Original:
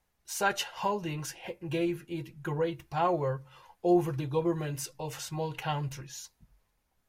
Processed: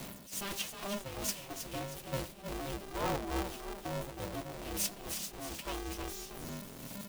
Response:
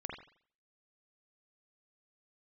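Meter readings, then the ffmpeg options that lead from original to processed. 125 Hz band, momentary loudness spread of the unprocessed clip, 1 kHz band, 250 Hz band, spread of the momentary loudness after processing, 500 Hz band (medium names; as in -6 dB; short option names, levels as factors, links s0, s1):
-8.5 dB, 13 LU, -8.5 dB, -9.0 dB, 7 LU, -9.5 dB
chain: -filter_complex "[0:a]aeval=exprs='val(0)+0.5*0.0266*sgn(val(0))':c=same,agate=range=0.282:threshold=0.0251:ratio=16:detection=peak,equalizer=f=2900:w=0.46:g=-7.5,areverse,acompressor=threshold=0.0158:ratio=6,areverse,aphaser=in_gain=1:out_gain=1:delay=4:decay=0.55:speed=0.32:type=sinusoidal,acrossover=split=160|1300[s0][s1][s2];[s2]aeval=exprs='max(val(0),0)':c=same[s3];[s0][s1][s3]amix=inputs=3:normalize=0,tremolo=f=2.3:d=0.65,highshelf=f=2000:t=q:w=1.5:g=10.5,asplit=6[s4][s5][s6][s7][s8][s9];[s5]adelay=316,afreqshift=33,volume=0.398[s10];[s6]adelay=632,afreqshift=66,volume=0.164[s11];[s7]adelay=948,afreqshift=99,volume=0.0668[s12];[s8]adelay=1264,afreqshift=132,volume=0.0275[s13];[s9]adelay=1580,afreqshift=165,volume=0.0112[s14];[s4][s10][s11][s12][s13][s14]amix=inputs=6:normalize=0,aeval=exprs='val(0)*sgn(sin(2*PI*200*n/s))':c=same"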